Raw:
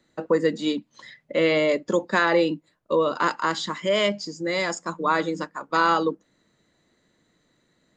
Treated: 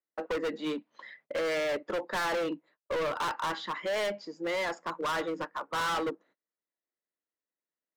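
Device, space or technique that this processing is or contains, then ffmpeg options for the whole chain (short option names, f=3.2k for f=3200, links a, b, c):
walkie-talkie: -af "highpass=430,lowpass=2.2k,asoftclip=type=hard:threshold=-28.5dB,agate=range=-29dB:threshold=-59dB:ratio=16:detection=peak"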